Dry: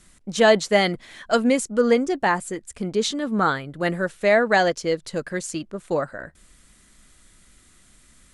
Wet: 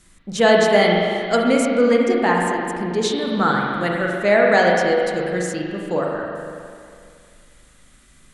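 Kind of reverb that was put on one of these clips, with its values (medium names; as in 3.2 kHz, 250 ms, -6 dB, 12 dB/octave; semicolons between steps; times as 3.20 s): spring tank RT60 2.3 s, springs 39/45 ms, chirp 30 ms, DRR -1.5 dB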